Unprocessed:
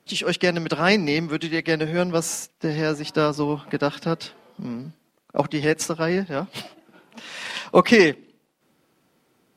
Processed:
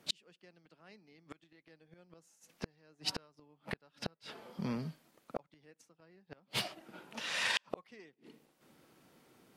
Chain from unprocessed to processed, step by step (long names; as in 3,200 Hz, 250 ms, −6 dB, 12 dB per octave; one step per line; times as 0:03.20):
gate with flip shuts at −19 dBFS, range −40 dB
dynamic equaliser 260 Hz, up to −7 dB, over −52 dBFS, Q 0.91